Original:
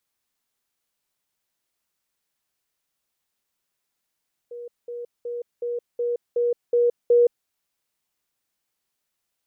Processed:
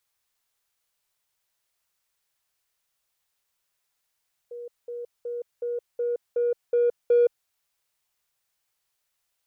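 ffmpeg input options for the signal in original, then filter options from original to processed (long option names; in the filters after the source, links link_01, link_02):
-f lavfi -i "aevalsrc='pow(10,(-33.5+3*floor(t/0.37))/20)*sin(2*PI*479*t)*clip(min(mod(t,0.37),0.17-mod(t,0.37))/0.005,0,1)':duration=2.96:sample_rate=44100"
-filter_complex "[0:a]asplit=2[link_01][link_02];[link_02]asoftclip=type=tanh:threshold=-23dB,volume=-11dB[link_03];[link_01][link_03]amix=inputs=2:normalize=0,equalizer=frequency=250:width_type=o:width=1.2:gain=-11.5"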